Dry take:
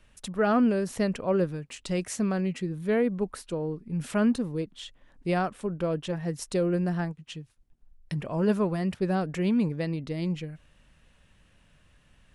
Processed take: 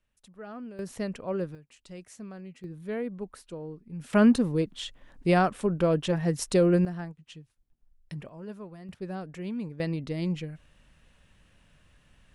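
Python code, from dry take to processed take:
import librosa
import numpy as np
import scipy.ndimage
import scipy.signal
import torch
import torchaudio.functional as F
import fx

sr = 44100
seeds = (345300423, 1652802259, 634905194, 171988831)

y = fx.gain(x, sr, db=fx.steps((0.0, -18.5), (0.79, -6.0), (1.55, -15.0), (2.64, -8.0), (4.13, 4.5), (6.85, -7.0), (8.29, -16.5), (8.89, -9.5), (9.8, 0.0)))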